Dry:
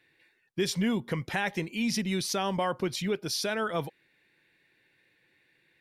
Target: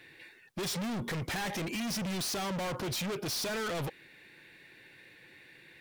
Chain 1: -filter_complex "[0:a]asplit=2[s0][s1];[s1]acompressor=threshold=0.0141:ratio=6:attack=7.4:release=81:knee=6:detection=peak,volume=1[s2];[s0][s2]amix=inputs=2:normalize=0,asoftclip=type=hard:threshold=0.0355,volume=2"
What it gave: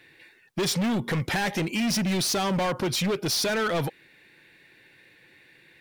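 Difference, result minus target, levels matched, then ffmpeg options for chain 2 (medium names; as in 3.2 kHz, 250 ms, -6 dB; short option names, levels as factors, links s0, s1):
hard clipper: distortion -4 dB
-filter_complex "[0:a]asplit=2[s0][s1];[s1]acompressor=threshold=0.0141:ratio=6:attack=7.4:release=81:knee=6:detection=peak,volume=1[s2];[s0][s2]amix=inputs=2:normalize=0,asoftclip=type=hard:threshold=0.0106,volume=2"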